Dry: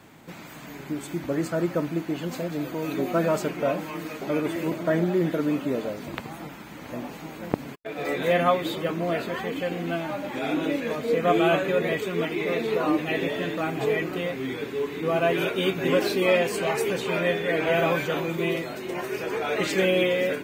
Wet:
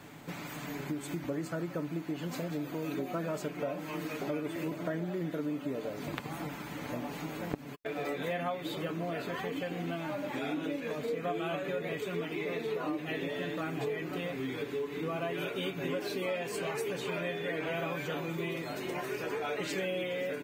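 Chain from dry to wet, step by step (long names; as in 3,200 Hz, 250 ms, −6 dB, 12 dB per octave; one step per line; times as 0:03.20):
comb filter 6.9 ms, depth 36%
downward compressor 4 to 1, threshold −34 dBFS, peak gain reduction 16 dB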